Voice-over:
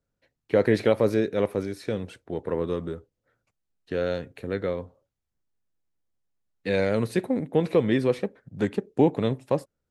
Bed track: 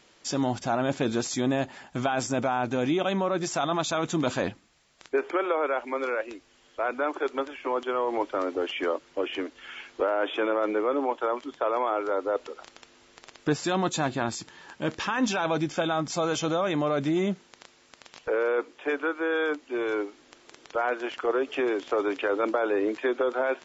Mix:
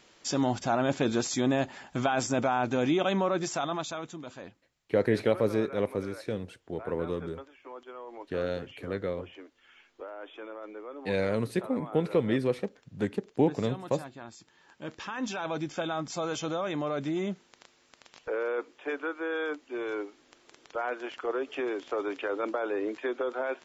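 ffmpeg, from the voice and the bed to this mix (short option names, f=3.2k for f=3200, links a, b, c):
-filter_complex "[0:a]adelay=4400,volume=-4.5dB[a];[1:a]volume=10.5dB,afade=t=out:st=3.25:d=0.94:silence=0.158489,afade=t=in:st=14.32:d=1.44:silence=0.281838[b];[a][b]amix=inputs=2:normalize=0"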